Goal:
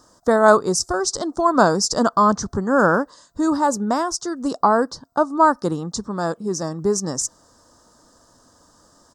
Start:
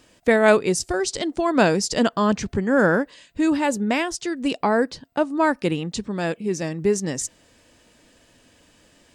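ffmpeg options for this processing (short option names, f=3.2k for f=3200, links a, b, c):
-af "firequalizer=gain_entry='entry(460,0);entry(1200,11);entry(2400,-27);entry(3600,-6);entry(5400,7);entry(9700,0)':delay=0.05:min_phase=1"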